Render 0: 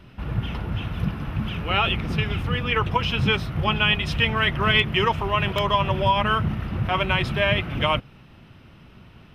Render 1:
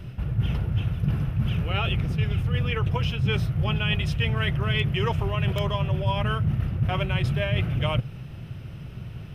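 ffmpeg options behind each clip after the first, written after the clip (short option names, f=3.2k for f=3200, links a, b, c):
-af "equalizer=f=125:t=o:w=1:g=8,equalizer=f=250:t=o:w=1:g=-8,equalizer=f=1k:t=o:w=1:g=-9,equalizer=f=2k:t=o:w=1:g=-4,equalizer=f=4k:t=o:w=1:g=-6,areverse,acompressor=threshold=-30dB:ratio=6,areverse,volume=8.5dB"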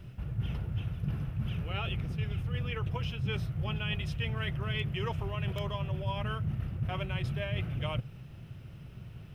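-af "acrusher=bits=10:mix=0:aa=0.000001,volume=-9dB"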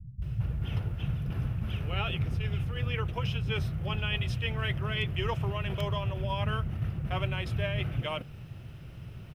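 -filter_complex "[0:a]acrossover=split=180[a][b];[b]adelay=220[c];[a][c]amix=inputs=2:normalize=0,volume=3.5dB"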